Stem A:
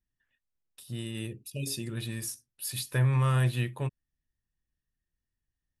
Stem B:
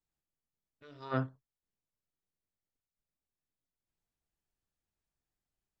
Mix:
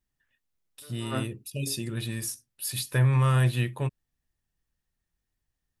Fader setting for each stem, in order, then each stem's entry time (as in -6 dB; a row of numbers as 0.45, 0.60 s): +3.0, +0.5 dB; 0.00, 0.00 s